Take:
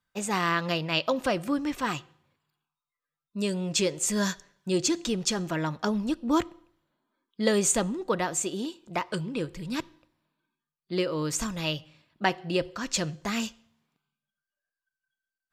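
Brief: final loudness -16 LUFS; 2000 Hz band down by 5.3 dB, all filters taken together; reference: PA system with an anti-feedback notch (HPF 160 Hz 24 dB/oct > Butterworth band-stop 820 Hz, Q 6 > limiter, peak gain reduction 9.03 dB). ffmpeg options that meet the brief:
-af "highpass=f=160:w=0.5412,highpass=f=160:w=1.3066,asuperstop=centerf=820:order=8:qfactor=6,equalizer=f=2k:t=o:g=-7,volume=16.5dB,alimiter=limit=-4.5dB:level=0:latency=1"

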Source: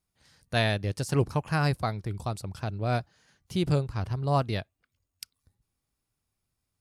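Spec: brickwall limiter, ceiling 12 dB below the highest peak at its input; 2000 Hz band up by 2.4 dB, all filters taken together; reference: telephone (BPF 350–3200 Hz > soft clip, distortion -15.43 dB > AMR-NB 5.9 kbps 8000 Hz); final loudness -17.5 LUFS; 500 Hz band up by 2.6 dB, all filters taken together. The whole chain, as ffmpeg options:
-af "equalizer=f=500:t=o:g=4.5,equalizer=f=2k:t=o:g=3.5,alimiter=limit=-21.5dB:level=0:latency=1,highpass=350,lowpass=3.2k,asoftclip=threshold=-26dB,volume=22.5dB" -ar 8000 -c:a libopencore_amrnb -b:a 5900

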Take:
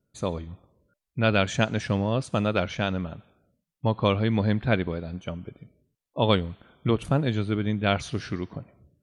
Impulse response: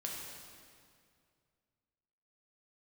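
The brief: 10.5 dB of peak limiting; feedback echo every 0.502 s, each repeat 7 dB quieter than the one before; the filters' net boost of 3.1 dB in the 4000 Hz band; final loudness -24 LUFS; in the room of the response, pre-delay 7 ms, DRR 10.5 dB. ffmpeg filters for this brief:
-filter_complex "[0:a]equalizer=f=4k:t=o:g=4,alimiter=limit=-16.5dB:level=0:latency=1,aecho=1:1:502|1004|1506|2008|2510:0.447|0.201|0.0905|0.0407|0.0183,asplit=2[a][b];[1:a]atrim=start_sample=2205,adelay=7[c];[b][c]afir=irnorm=-1:irlink=0,volume=-11dB[d];[a][d]amix=inputs=2:normalize=0,volume=5dB"

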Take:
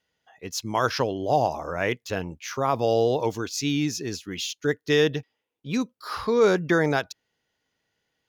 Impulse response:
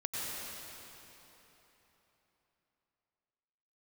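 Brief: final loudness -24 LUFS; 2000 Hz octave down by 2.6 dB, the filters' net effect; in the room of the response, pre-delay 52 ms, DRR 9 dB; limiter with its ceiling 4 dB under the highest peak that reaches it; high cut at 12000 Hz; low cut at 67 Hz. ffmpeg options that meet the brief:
-filter_complex "[0:a]highpass=67,lowpass=12k,equalizer=f=2k:t=o:g=-3.5,alimiter=limit=-14dB:level=0:latency=1,asplit=2[a][b];[1:a]atrim=start_sample=2205,adelay=52[c];[b][c]afir=irnorm=-1:irlink=0,volume=-13.5dB[d];[a][d]amix=inputs=2:normalize=0,volume=3dB"

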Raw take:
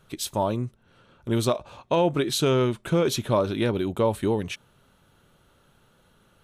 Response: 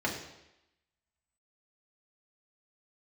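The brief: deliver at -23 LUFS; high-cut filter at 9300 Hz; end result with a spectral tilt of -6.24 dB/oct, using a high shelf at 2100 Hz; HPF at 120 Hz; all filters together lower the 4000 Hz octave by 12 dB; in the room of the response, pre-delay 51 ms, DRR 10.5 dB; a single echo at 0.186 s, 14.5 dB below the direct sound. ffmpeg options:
-filter_complex "[0:a]highpass=120,lowpass=9.3k,highshelf=f=2.1k:g=-6.5,equalizer=f=4k:t=o:g=-8.5,aecho=1:1:186:0.188,asplit=2[a][b];[1:a]atrim=start_sample=2205,adelay=51[c];[b][c]afir=irnorm=-1:irlink=0,volume=-19dB[d];[a][d]amix=inputs=2:normalize=0,volume=2.5dB"

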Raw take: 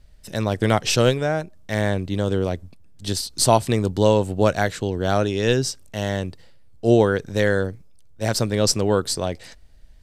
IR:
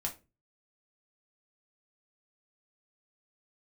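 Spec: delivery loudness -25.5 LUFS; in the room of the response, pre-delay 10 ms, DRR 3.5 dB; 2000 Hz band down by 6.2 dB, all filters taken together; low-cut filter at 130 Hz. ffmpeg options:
-filter_complex "[0:a]highpass=130,equalizer=f=2k:t=o:g=-8.5,asplit=2[a][b];[1:a]atrim=start_sample=2205,adelay=10[c];[b][c]afir=irnorm=-1:irlink=0,volume=-5dB[d];[a][d]amix=inputs=2:normalize=0,volume=-4.5dB"

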